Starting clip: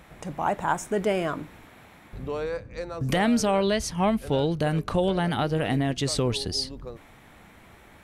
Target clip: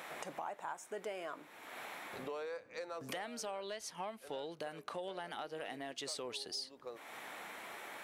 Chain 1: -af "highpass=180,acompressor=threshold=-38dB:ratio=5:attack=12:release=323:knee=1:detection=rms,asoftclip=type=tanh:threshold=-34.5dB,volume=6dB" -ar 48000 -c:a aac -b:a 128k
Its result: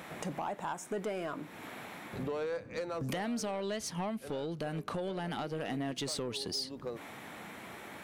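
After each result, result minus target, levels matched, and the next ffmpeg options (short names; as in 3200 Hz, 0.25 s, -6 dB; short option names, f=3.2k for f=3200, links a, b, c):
250 Hz band +7.0 dB; compressor: peak gain reduction -6.5 dB
-af "highpass=490,acompressor=threshold=-38dB:ratio=5:attack=12:release=323:knee=1:detection=rms,asoftclip=type=tanh:threshold=-34.5dB,volume=6dB" -ar 48000 -c:a aac -b:a 128k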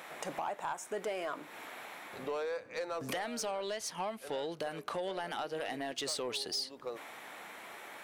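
compressor: peak gain reduction -7 dB
-af "highpass=490,acompressor=threshold=-47dB:ratio=5:attack=12:release=323:knee=1:detection=rms,asoftclip=type=tanh:threshold=-34.5dB,volume=6dB" -ar 48000 -c:a aac -b:a 128k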